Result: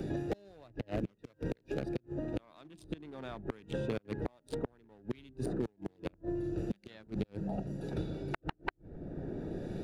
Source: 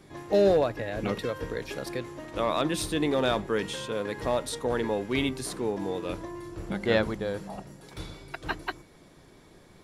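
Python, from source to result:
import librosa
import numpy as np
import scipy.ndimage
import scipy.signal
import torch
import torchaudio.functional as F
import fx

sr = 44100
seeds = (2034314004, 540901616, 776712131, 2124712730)

y = fx.wiener(x, sr, points=41)
y = fx.dynamic_eq(y, sr, hz=500.0, q=3.2, threshold_db=-42.0, ratio=4.0, max_db=-6)
y = fx.gate_flip(y, sr, shuts_db=-24.0, range_db=-37)
y = fx.band_squash(y, sr, depth_pct=100)
y = y * 10.0 ** (4.0 / 20.0)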